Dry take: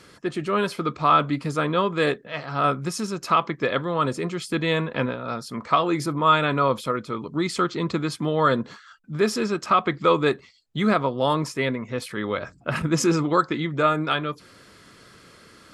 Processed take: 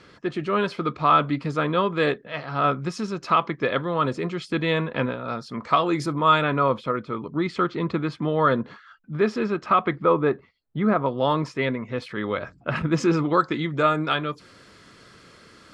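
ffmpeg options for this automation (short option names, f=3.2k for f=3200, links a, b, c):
-af "asetnsamples=n=441:p=0,asendcmd='5.63 lowpass f 7100;6.42 lowpass f 2800;9.96 lowpass f 1500;11.06 lowpass f 3800;13.41 lowpass f 8000',lowpass=4.4k"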